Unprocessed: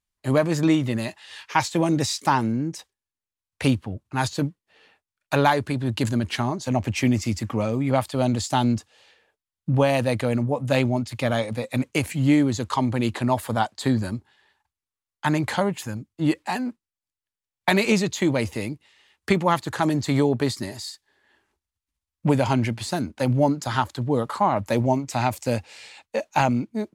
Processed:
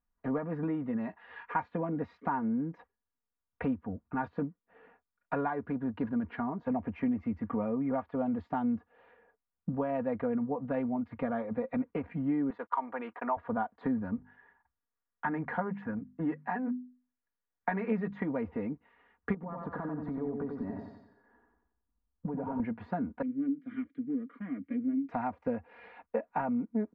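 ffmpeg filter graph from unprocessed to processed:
ffmpeg -i in.wav -filter_complex "[0:a]asettb=1/sr,asplit=3[link_01][link_02][link_03];[link_01]atrim=end=12.504[link_04];[link_02]atrim=start=12.5:end=13.37,asetpts=PTS-STARTPTS,afade=type=in:duration=0.004:curve=qsin,afade=type=out:start_time=0.866:duration=0.004:curve=qsin,agate=range=-45dB:threshold=-31dB:ratio=16:release=100:detection=peak,highpass=770,lowpass=3600,acontrast=35[link_05];[link_03]atrim=start=13.366[link_06];[link_04][link_05]acrossfade=duration=0.004:curve1=hsin:curve2=qsin[link_07];[link_07][link_06]acrossfade=duration=0.004:curve1=qsin:curve2=hsin,asettb=1/sr,asplit=3[link_08][link_09][link_10];[link_08]atrim=end=14.164[link_11];[link_09]atrim=start=14.16:end=18.24,asetpts=PTS-STARTPTS,afade=type=in:duration=0.004:curve=qsin,afade=type=out:start_time=4.076:duration=0.004:curve=qsin,equalizer=frequency=1800:width_type=o:width=0.47:gain=6,bandreject=frequency=50:width_type=h:width=6,bandreject=frequency=100:width_type=h:width=6,bandreject=frequency=150:width_type=h:width=6,bandreject=frequency=200:width_type=h:width=6,bandreject=frequency=250:width_type=h:width=6[link_12];[link_10]atrim=start=18.236[link_13];[link_11][link_12]acrossfade=duration=0.004:curve1=hsin:curve2=qsin[link_14];[link_14][link_13]acrossfade=duration=0.004:curve1=qsin:curve2=hsin,asettb=1/sr,asplit=3[link_15][link_16][link_17];[link_15]atrim=end=19.344[link_18];[link_16]atrim=start=19.34:end=22.6,asetpts=PTS-STARTPTS,afade=type=in:duration=0.004:curve=qsin,afade=type=out:start_time=3.256:duration=0.004:curve=qsin,acompressor=threshold=-30dB:ratio=6:attack=3.2:release=140:knee=1:detection=peak,equalizer=frequency=2600:width=0.92:gain=-10.5,aecho=1:1:90|180|270|360|450:0.596|0.256|0.11|0.0474|0.0204,atrim=end_sample=143766[link_19];[link_17]atrim=start=22.596[link_20];[link_18][link_19]acrossfade=duration=0.004:curve1=hsin:curve2=qsin[link_21];[link_21][link_20]acrossfade=duration=0.004:curve1=qsin:curve2=hsin,asettb=1/sr,asplit=3[link_22][link_23][link_24];[link_22]atrim=end=23.224[link_25];[link_23]atrim=start=23.22:end=25.09,asetpts=PTS-STARTPTS,afade=type=in:duration=0.004:curve=qsin,afade=type=out:start_time=1.866:duration=0.004:curve=qsin,aeval=exprs='clip(val(0),-1,0.0708)':channel_layout=same,asplit=3[link_26][link_27][link_28];[link_26]bandpass=frequency=270:width_type=q:width=8,volume=0dB[link_29];[link_27]bandpass=frequency=2290:width_type=q:width=8,volume=-6dB[link_30];[link_28]bandpass=frequency=3010:width_type=q:width=8,volume=-9dB[link_31];[link_29][link_30][link_31]amix=inputs=3:normalize=0[link_32];[link_24]atrim=start=25.086[link_33];[link_25][link_32]acrossfade=duration=0.004:curve1=hsin:curve2=qsin[link_34];[link_34][link_33]acrossfade=duration=0.004:curve1=qsin:curve2=hsin,acompressor=threshold=-34dB:ratio=3,lowpass=frequency=1600:width=0.5412,lowpass=frequency=1600:width=1.3066,aecho=1:1:4.2:0.77" out.wav

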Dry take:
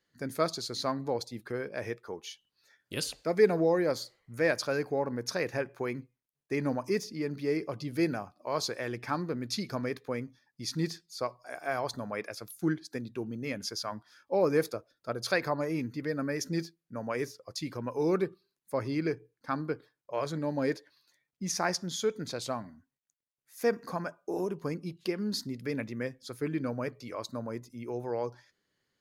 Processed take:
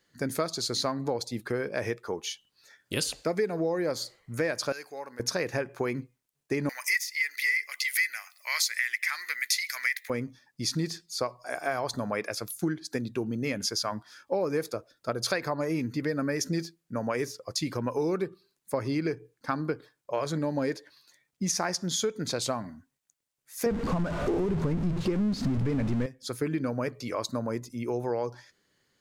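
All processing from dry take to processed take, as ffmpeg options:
ffmpeg -i in.wav -filter_complex "[0:a]asettb=1/sr,asplit=3[link_01][link_02][link_03];[link_01]atrim=end=4.724[link_04];[link_02]atrim=start=4.72:end=5.2,asetpts=PTS-STARTPTS,afade=type=in:duration=0.004:curve=qsin,afade=type=out:start_time=0.476:duration=0.004:curve=qsin,lowpass=frequency=3900:poles=1,aderivative,acontrast=35[link_05];[link_03]atrim=start=5.196[link_06];[link_04][link_05]acrossfade=duration=0.004:curve1=hsin:curve2=qsin[link_07];[link_07][link_06]acrossfade=duration=0.004:curve1=qsin:curve2=hsin,asettb=1/sr,asplit=3[link_08][link_09][link_10];[link_08]atrim=end=6.694[link_11];[link_09]atrim=start=6.69:end=10.1,asetpts=PTS-STARTPTS,afade=type=in:duration=0.004:curve=qsin,afade=type=out:start_time=3.406:duration=0.004:curve=qsin,highpass=frequency=2000:width_type=q:width=14,aemphasis=mode=production:type=riaa[link_12];[link_10]atrim=start=10.096[link_13];[link_11][link_12]acrossfade=duration=0.004:curve1=hsin:curve2=qsin[link_14];[link_14][link_13]acrossfade=duration=0.004:curve1=qsin:curve2=hsin,asettb=1/sr,asplit=3[link_15][link_16][link_17];[link_15]atrim=end=23.664[link_18];[link_16]atrim=start=23.66:end=26.06,asetpts=PTS-STARTPTS,afade=type=in:duration=0.004:curve=qsin,afade=type=out:start_time=2.396:duration=0.004:curve=qsin,aeval=exprs='val(0)+0.5*0.0335*sgn(val(0))':channel_layout=same,aemphasis=mode=reproduction:type=riaa[link_19];[link_17]atrim=start=26.056[link_20];[link_18][link_19]acrossfade=duration=0.004:curve1=hsin:curve2=qsin[link_21];[link_21][link_20]acrossfade=duration=0.004:curve1=qsin:curve2=hsin,equalizer=frequency=7700:width=1.5:gain=3.5,acompressor=threshold=-33dB:ratio=6,volume=7.5dB" out.wav

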